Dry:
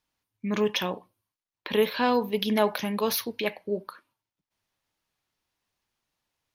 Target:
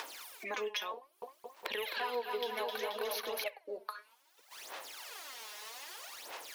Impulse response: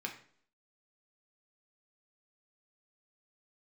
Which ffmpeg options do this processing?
-filter_complex "[0:a]acompressor=mode=upward:threshold=-32dB:ratio=2.5,highpass=frequency=440:width=0.5412,highpass=frequency=440:width=1.3066,aphaser=in_gain=1:out_gain=1:delay=4.8:decay=0.73:speed=0.63:type=sinusoidal,asettb=1/sr,asplit=3[link_01][link_02][link_03];[link_01]atrim=end=0.964[link_04];[link_02]atrim=start=0.96:end=3.44,asetpts=PTS-STARTPTS,afade=type=in:duration=0.004:curve=qsin,afade=type=out:start_time=2.476:duration=0.004:curve=qsin,aecho=1:1:260|481|668.8|828.5|964.2:0.631|0.398|0.251|0.158|0.1,atrim=end_sample=109368[link_05];[link_03]atrim=start=3.436[link_06];[link_04][link_05]acrossfade=duration=0.004:curve1=hsin:curve2=qsin[link_07];[link_07][link_06]acrossfade=duration=0.004:curve1=qsin:curve2=hsin,acompressor=threshold=-43dB:ratio=4,volume=4.5dB"

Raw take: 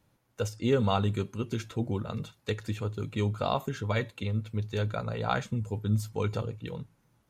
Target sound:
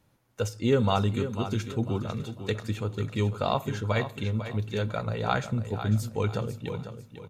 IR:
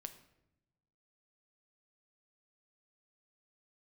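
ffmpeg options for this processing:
-filter_complex "[0:a]aecho=1:1:498|996|1494|1992:0.299|0.0985|0.0325|0.0107,asplit=2[link_01][link_02];[1:a]atrim=start_sample=2205,asetrate=37926,aresample=44100[link_03];[link_02][link_03]afir=irnorm=-1:irlink=0,volume=-7dB[link_04];[link_01][link_04]amix=inputs=2:normalize=0"

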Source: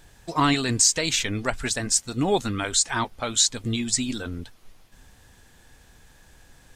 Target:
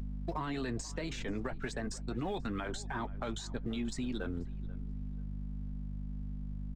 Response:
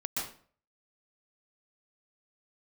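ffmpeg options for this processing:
-filter_complex "[0:a]aemphasis=mode=reproduction:type=50fm,anlmdn=6.31,adynamicequalizer=threshold=0.00562:dfrequency=1700:dqfactor=4.4:tfrequency=1700:tqfactor=4.4:attack=5:release=100:ratio=0.375:range=2:mode=boostabove:tftype=bell,aeval=exprs='val(0)+0.0141*(sin(2*PI*50*n/s)+sin(2*PI*2*50*n/s)/2+sin(2*PI*3*50*n/s)/3+sin(2*PI*4*50*n/s)/4+sin(2*PI*5*50*n/s)/5)':channel_layout=same,asplit=2[link_01][link_02];[link_02]acompressor=threshold=-31dB:ratio=20,volume=-2dB[link_03];[link_01][link_03]amix=inputs=2:normalize=0,alimiter=limit=-19dB:level=0:latency=1:release=24,aeval=exprs='sgn(val(0))*max(abs(val(0))-0.0015,0)':channel_layout=same,flanger=delay=4.4:depth=1.3:regen=-57:speed=1.6:shape=triangular,acrossover=split=91|290|1100[link_04][link_05][link_06][link_07];[link_04]acompressor=threshold=-40dB:ratio=4[link_08];[link_05]acompressor=threshold=-44dB:ratio=4[link_09];[link_06]acompressor=threshold=-39dB:ratio=4[link_10];[link_07]acompressor=threshold=-47dB:ratio=4[link_11];[link_08][link_09][link_10][link_11]amix=inputs=4:normalize=0,asplit=2[link_12][link_13];[link_13]adelay=486,lowpass=frequency=2400:poles=1,volume=-19dB,asplit=2[link_14][link_15];[link_15]adelay=486,lowpass=frequency=2400:poles=1,volume=0.3,asplit=2[link_16][link_17];[link_17]adelay=486,lowpass=frequency=2400:poles=1,volume=0.3[link_18];[link_14][link_16][link_18]amix=inputs=3:normalize=0[link_19];[link_12][link_19]amix=inputs=2:normalize=0,volume=1dB"

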